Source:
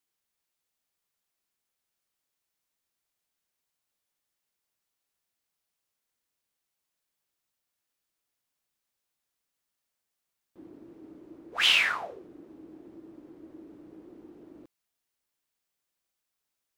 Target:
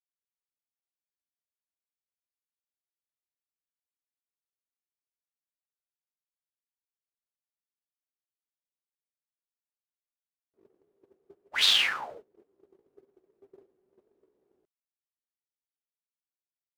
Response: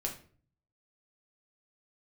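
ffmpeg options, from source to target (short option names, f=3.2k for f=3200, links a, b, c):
-af "asetrate=53981,aresample=44100,atempo=0.816958,agate=range=-23dB:threshold=-45dB:ratio=16:detection=peak"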